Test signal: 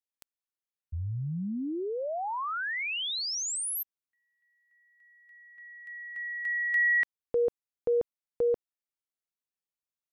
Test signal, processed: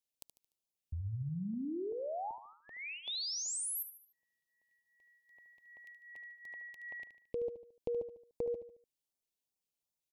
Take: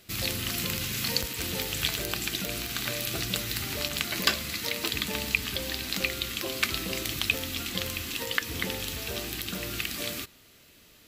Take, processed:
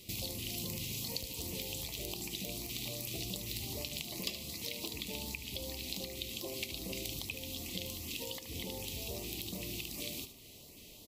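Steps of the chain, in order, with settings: compression 2.5:1, threshold -45 dBFS; LFO notch saw up 2.6 Hz 670–4100 Hz; Butterworth band-stop 1.5 kHz, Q 1.1; feedback delay 74 ms, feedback 43%, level -11 dB; trim +3 dB

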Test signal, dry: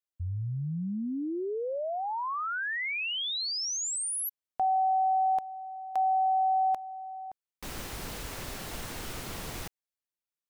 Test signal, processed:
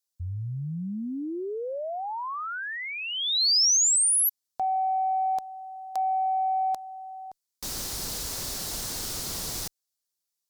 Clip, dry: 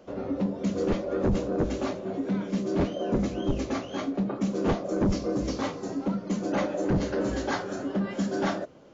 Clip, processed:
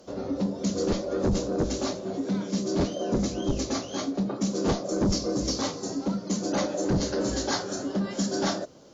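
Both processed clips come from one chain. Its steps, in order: resonant high shelf 3.5 kHz +9.5 dB, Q 1.5; Chebyshev shaper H 5 -39 dB, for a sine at -15 dBFS

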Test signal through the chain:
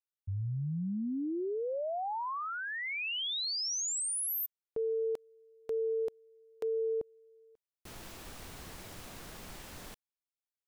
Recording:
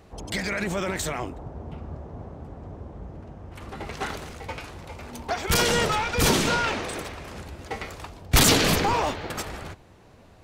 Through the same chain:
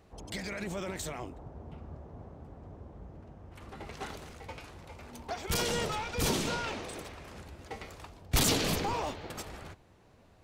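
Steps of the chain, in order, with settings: dynamic bell 1.6 kHz, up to -4 dB, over -40 dBFS, Q 1.2; trim -8.5 dB

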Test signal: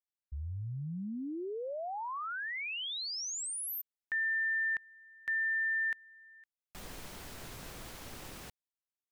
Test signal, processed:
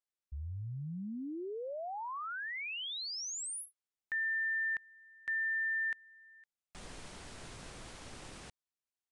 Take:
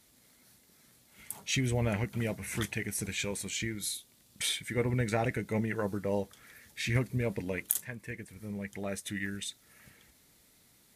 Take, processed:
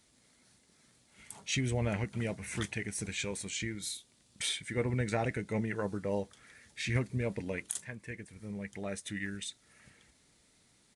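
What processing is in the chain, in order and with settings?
resampled via 22.05 kHz; trim -2 dB

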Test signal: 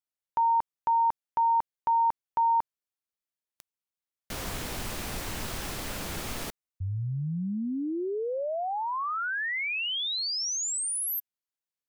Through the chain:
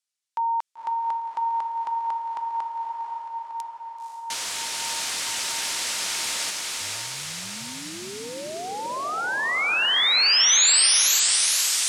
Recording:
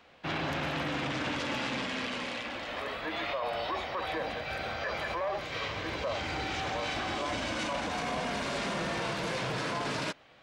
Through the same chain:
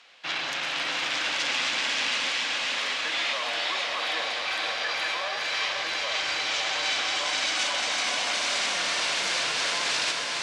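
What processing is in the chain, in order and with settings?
frequency weighting ITU-R 468; on a send: echo that smears into a reverb 520 ms, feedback 71%, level -3 dB

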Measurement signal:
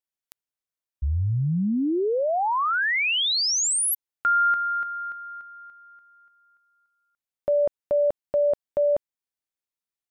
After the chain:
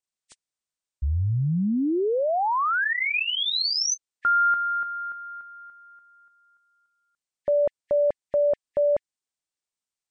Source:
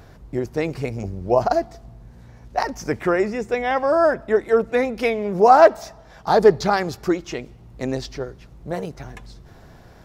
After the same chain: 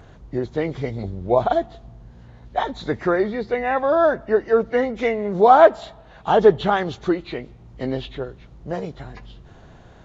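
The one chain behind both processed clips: knee-point frequency compression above 1.7 kHz 1.5:1

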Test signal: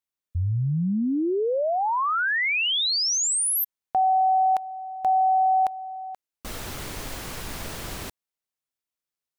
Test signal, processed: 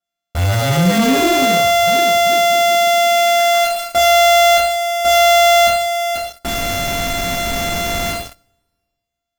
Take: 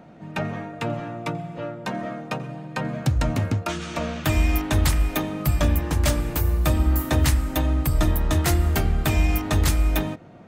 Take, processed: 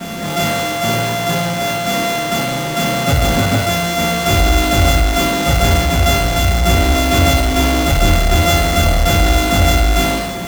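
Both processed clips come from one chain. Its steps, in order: sorted samples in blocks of 64 samples; feedback echo behind a high-pass 66 ms, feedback 33%, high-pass 2.4 kHz, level -9.5 dB; two-slope reverb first 0.53 s, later 1.8 s, from -26 dB, DRR -10 dB; in parallel at -4.5 dB: fuzz box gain 38 dB, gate -42 dBFS; on the sum: trim -4.5 dB

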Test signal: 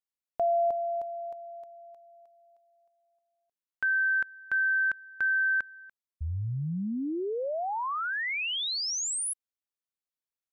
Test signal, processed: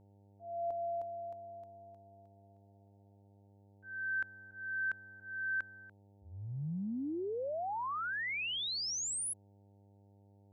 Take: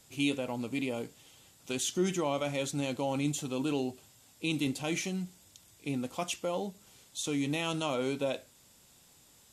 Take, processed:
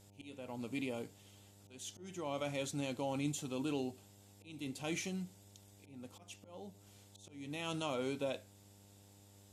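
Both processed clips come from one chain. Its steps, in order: slow attack 450 ms; mains buzz 100 Hz, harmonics 9, -57 dBFS -6 dB/octave; trim -6 dB

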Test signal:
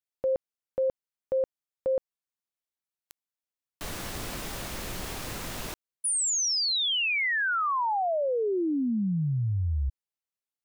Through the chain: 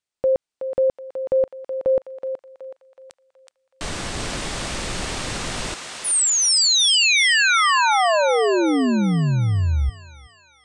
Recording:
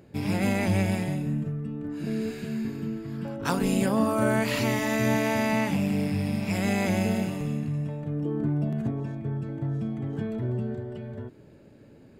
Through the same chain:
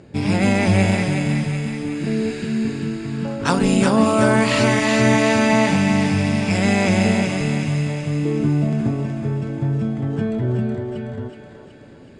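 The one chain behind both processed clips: Chebyshev low-pass 8.9 kHz, order 4; on a send: thinning echo 373 ms, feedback 62%, high-pass 740 Hz, level -4.5 dB; on the sum: trim +9 dB

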